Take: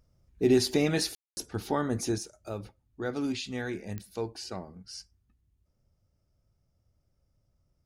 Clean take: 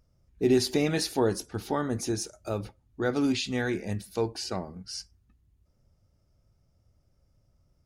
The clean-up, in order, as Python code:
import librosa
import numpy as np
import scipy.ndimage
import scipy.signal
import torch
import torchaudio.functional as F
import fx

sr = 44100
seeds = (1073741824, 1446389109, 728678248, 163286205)

y = fx.fix_declick_ar(x, sr, threshold=10.0)
y = fx.fix_ambience(y, sr, seeds[0], print_start_s=5.95, print_end_s=6.45, start_s=1.15, end_s=1.37)
y = fx.gain(y, sr, db=fx.steps((0.0, 0.0), (2.18, 5.5)))